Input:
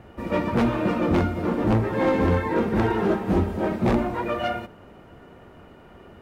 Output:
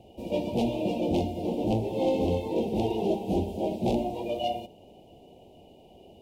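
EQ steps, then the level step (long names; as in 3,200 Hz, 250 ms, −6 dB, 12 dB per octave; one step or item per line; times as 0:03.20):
Chebyshev band-stop filter 770–2,800 Hz, order 3
low-shelf EQ 280 Hz −9.5 dB
0.0 dB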